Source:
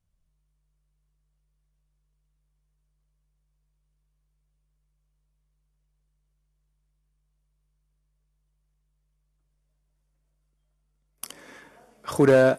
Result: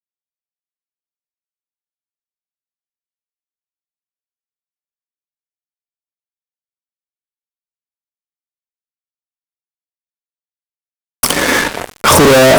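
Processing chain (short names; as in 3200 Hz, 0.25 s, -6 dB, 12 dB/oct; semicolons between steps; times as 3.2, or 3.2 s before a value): de-hum 69.9 Hz, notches 27; fuzz box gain 48 dB, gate -52 dBFS; gain +7.5 dB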